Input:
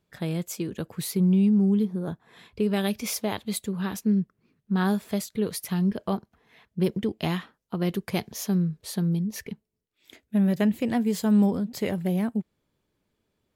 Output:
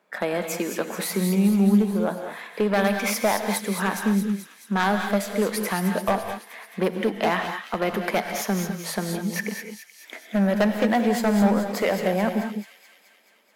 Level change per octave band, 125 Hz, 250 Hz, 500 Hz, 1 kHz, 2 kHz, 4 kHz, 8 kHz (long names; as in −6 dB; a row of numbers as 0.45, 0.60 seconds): −1.5, +1.0, +7.0, +10.5, +11.0, +4.5, +4.5 decibels